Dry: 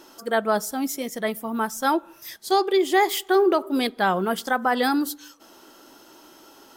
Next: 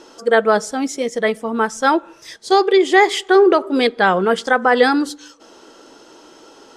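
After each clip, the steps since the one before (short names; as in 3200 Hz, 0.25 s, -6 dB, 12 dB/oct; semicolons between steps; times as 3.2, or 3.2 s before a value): dynamic EQ 1900 Hz, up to +5 dB, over -39 dBFS, Q 1.2; LPF 8300 Hz 24 dB/oct; bell 470 Hz +9.5 dB 0.32 oct; gain +4.5 dB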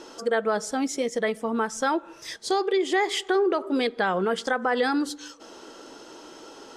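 in parallel at 0 dB: limiter -10.5 dBFS, peak gain reduction 9 dB; on the sum: compressor 2:1, threshold -20 dBFS, peak gain reduction 8.5 dB; gain -6.5 dB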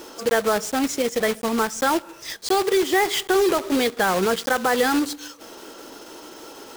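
block floating point 3-bit; gain +3.5 dB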